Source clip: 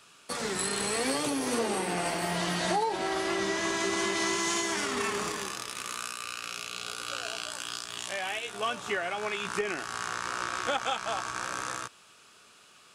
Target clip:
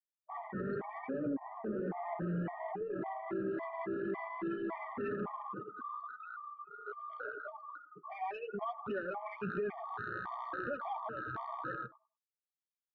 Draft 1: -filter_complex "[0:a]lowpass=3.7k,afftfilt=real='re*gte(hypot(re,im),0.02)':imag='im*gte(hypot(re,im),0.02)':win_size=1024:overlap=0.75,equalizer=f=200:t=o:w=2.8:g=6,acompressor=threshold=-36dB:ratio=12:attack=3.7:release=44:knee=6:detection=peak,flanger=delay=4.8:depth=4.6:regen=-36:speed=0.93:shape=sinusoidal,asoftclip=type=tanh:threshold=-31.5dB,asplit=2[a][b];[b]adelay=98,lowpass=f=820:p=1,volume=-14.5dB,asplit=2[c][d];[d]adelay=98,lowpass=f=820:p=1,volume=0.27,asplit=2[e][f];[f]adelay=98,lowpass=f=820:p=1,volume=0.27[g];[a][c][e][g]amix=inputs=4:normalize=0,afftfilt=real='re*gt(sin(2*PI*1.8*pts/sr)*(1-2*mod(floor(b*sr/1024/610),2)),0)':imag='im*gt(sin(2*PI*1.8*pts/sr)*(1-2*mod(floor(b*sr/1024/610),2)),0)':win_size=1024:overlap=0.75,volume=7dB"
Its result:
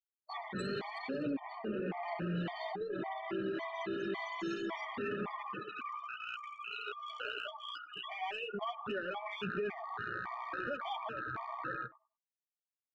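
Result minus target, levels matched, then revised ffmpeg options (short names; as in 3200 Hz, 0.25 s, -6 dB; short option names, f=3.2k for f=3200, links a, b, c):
4000 Hz band +19.0 dB
-filter_complex "[0:a]lowpass=1.6k,afftfilt=real='re*gte(hypot(re,im),0.02)':imag='im*gte(hypot(re,im),0.02)':win_size=1024:overlap=0.75,equalizer=f=200:t=o:w=2.8:g=6,acompressor=threshold=-36dB:ratio=12:attack=3.7:release=44:knee=6:detection=peak,flanger=delay=4.8:depth=4.6:regen=-36:speed=0.93:shape=sinusoidal,asoftclip=type=tanh:threshold=-31.5dB,asplit=2[a][b];[b]adelay=98,lowpass=f=820:p=1,volume=-14.5dB,asplit=2[c][d];[d]adelay=98,lowpass=f=820:p=1,volume=0.27,asplit=2[e][f];[f]adelay=98,lowpass=f=820:p=1,volume=0.27[g];[a][c][e][g]amix=inputs=4:normalize=0,afftfilt=real='re*gt(sin(2*PI*1.8*pts/sr)*(1-2*mod(floor(b*sr/1024/610),2)),0)':imag='im*gt(sin(2*PI*1.8*pts/sr)*(1-2*mod(floor(b*sr/1024/610),2)),0)':win_size=1024:overlap=0.75,volume=7dB"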